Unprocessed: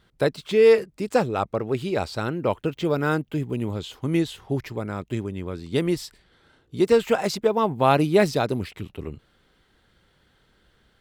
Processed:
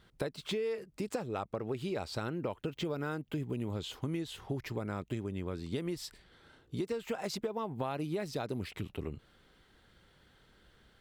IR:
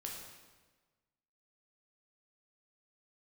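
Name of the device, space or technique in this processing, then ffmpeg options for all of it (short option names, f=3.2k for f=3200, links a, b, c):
serial compression, peaks first: -af "acompressor=threshold=-25dB:ratio=6,acompressor=threshold=-35dB:ratio=2,volume=-1.5dB"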